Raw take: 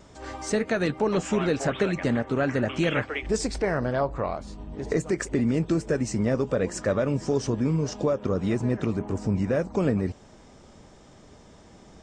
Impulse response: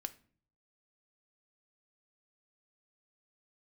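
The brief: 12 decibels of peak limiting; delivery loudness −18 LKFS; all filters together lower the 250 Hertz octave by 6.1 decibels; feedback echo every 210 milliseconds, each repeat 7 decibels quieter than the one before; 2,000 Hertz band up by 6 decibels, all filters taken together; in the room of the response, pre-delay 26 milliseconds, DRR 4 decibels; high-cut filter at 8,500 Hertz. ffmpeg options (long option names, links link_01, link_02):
-filter_complex "[0:a]lowpass=8500,equalizer=frequency=250:width_type=o:gain=-8.5,equalizer=frequency=2000:width_type=o:gain=7.5,alimiter=limit=-21dB:level=0:latency=1,aecho=1:1:210|420|630|840|1050:0.447|0.201|0.0905|0.0407|0.0183,asplit=2[link_01][link_02];[1:a]atrim=start_sample=2205,adelay=26[link_03];[link_02][link_03]afir=irnorm=-1:irlink=0,volume=-1.5dB[link_04];[link_01][link_04]amix=inputs=2:normalize=0,volume=11dB"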